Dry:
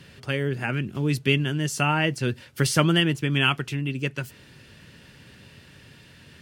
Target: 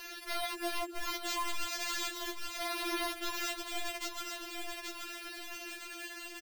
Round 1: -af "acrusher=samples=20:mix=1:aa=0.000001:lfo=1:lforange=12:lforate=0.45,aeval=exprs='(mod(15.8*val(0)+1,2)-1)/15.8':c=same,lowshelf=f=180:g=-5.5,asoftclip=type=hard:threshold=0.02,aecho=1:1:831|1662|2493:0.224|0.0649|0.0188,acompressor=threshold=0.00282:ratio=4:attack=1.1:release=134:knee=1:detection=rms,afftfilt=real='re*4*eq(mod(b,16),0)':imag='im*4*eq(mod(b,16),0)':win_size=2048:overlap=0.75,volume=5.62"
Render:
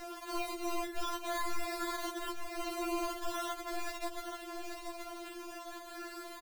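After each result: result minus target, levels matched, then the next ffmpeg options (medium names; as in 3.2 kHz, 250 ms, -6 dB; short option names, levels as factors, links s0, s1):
hard clipper: distortion +11 dB; decimation with a swept rate: distortion +8 dB
-af "acrusher=samples=20:mix=1:aa=0.000001:lfo=1:lforange=12:lforate=0.45,aeval=exprs='(mod(15.8*val(0)+1,2)-1)/15.8':c=same,lowshelf=f=180:g=-5.5,asoftclip=type=hard:threshold=0.0473,aecho=1:1:831|1662|2493:0.224|0.0649|0.0188,acompressor=threshold=0.00282:ratio=4:attack=1.1:release=134:knee=1:detection=rms,afftfilt=real='re*4*eq(mod(b,16),0)':imag='im*4*eq(mod(b,16),0)':win_size=2048:overlap=0.75,volume=5.62"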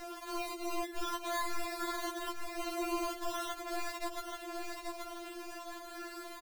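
decimation with a swept rate: distortion +8 dB
-af "acrusher=samples=5:mix=1:aa=0.000001:lfo=1:lforange=3:lforate=0.45,aeval=exprs='(mod(15.8*val(0)+1,2)-1)/15.8':c=same,lowshelf=f=180:g=-5.5,asoftclip=type=hard:threshold=0.0473,aecho=1:1:831|1662|2493:0.224|0.0649|0.0188,acompressor=threshold=0.00282:ratio=4:attack=1.1:release=134:knee=1:detection=rms,afftfilt=real='re*4*eq(mod(b,16),0)':imag='im*4*eq(mod(b,16),0)':win_size=2048:overlap=0.75,volume=5.62"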